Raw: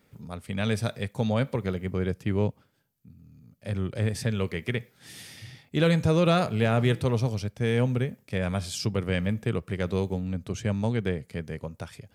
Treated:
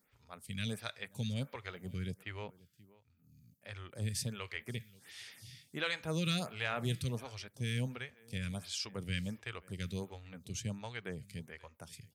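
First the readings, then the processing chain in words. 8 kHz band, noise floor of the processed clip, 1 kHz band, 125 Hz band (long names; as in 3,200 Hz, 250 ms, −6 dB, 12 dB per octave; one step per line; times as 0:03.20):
−3.5 dB, −71 dBFS, −13.0 dB, −12.5 dB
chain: guitar amp tone stack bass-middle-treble 5-5-5
on a send: single-tap delay 531 ms −23 dB
on the sum: phaser with staggered stages 1.4 Hz
level +6.5 dB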